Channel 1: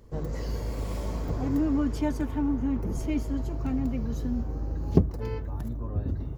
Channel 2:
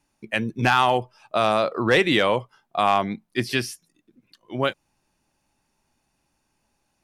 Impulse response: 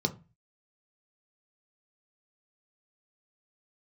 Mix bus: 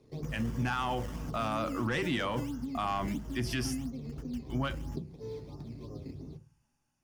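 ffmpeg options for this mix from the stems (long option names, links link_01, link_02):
-filter_complex "[0:a]lowshelf=frequency=200:gain=-7,acompressor=threshold=-36dB:ratio=6,acrusher=samples=13:mix=1:aa=0.000001:lfo=1:lforange=13:lforate=3,volume=0dB,asplit=2[link_01][link_02];[link_02]volume=-14dB[link_03];[1:a]dynaudnorm=framelen=400:gausssize=5:maxgain=4.5dB,volume=-8.5dB,asplit=3[link_04][link_05][link_06];[link_05]volume=-14dB[link_07];[link_06]apad=whole_len=281018[link_08];[link_01][link_08]sidechaingate=range=-33dB:threshold=-59dB:ratio=16:detection=peak[link_09];[2:a]atrim=start_sample=2205[link_10];[link_03][link_07]amix=inputs=2:normalize=0[link_11];[link_11][link_10]afir=irnorm=-1:irlink=0[link_12];[link_09][link_04][link_12]amix=inputs=3:normalize=0,asoftclip=type=tanh:threshold=-17dB,alimiter=limit=-24dB:level=0:latency=1:release=29"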